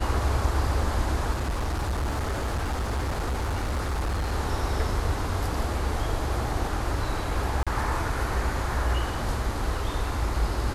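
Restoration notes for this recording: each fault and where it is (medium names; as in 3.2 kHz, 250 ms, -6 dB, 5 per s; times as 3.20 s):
1.32–4.33 s: clipped -24 dBFS
7.63–7.67 s: dropout 36 ms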